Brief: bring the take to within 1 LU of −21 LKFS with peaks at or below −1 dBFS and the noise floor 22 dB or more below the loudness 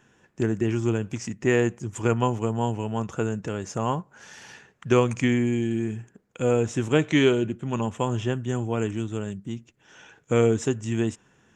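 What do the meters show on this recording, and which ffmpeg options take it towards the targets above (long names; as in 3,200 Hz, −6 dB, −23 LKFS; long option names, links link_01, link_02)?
integrated loudness −25.5 LKFS; sample peak −6.5 dBFS; target loudness −21.0 LKFS
→ -af "volume=4.5dB"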